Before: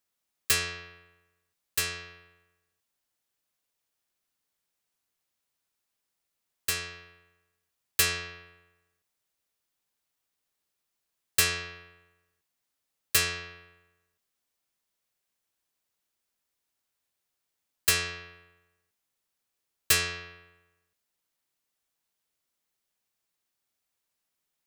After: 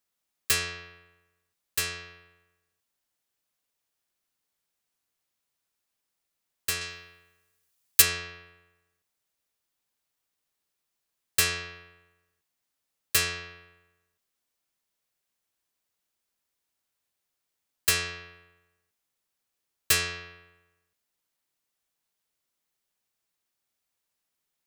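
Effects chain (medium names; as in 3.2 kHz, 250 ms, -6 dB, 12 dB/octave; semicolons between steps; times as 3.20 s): 6.81–8.02 s: treble shelf 3.8 kHz +9 dB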